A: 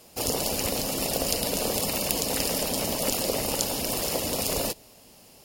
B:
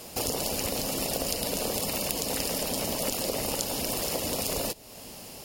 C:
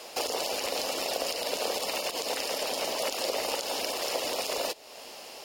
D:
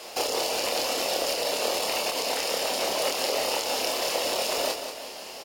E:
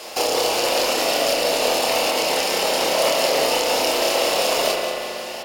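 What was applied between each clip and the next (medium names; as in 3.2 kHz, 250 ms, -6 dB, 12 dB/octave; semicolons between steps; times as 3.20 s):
compression 2.5:1, threshold -42 dBFS, peak gain reduction 14.5 dB; trim +9 dB
peak limiter -17 dBFS, peak gain reduction 10.5 dB; three-band isolator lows -24 dB, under 380 Hz, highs -12 dB, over 6.2 kHz; trim +3.5 dB
doubling 27 ms -4 dB; feedback delay 182 ms, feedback 45%, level -8 dB; trim +2 dB
spring tank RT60 2.7 s, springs 33/39 ms, chirp 40 ms, DRR 0.5 dB; trim +5.5 dB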